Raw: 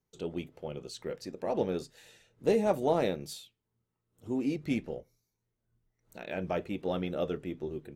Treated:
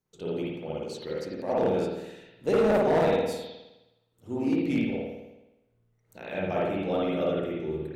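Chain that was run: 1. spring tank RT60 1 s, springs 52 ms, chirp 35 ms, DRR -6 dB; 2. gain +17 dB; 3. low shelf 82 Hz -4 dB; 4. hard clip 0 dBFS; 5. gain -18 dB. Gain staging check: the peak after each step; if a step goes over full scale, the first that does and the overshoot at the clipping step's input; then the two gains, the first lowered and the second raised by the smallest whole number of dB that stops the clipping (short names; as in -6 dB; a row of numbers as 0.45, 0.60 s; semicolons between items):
-8.5, +8.5, +8.5, 0.0, -18.0 dBFS; step 2, 8.5 dB; step 2 +8 dB, step 5 -9 dB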